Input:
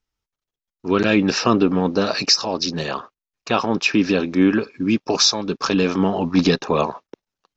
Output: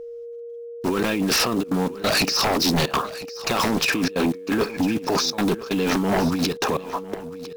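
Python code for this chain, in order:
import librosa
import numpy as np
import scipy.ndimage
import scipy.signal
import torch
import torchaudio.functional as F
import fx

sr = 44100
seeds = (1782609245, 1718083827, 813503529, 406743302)

y = fx.block_float(x, sr, bits=5)
y = fx.over_compress(y, sr, threshold_db=-24.0, ratio=-1.0)
y = fx.step_gate(y, sr, bpm=184, pattern='xxxxx.xx..xxxxx', floor_db=-24.0, edge_ms=4.5)
y = y + 10.0 ** (-39.0 / 20.0) * np.sin(2.0 * np.pi * 470.0 * np.arange(len(y)) / sr)
y = fx.fold_sine(y, sr, drive_db=5, ceiling_db=-13.0)
y = y + 10.0 ** (-16.5 / 20.0) * np.pad(y, (int(1003 * sr / 1000.0), 0))[:len(y)]
y = y * librosa.db_to_amplitude(-3.0)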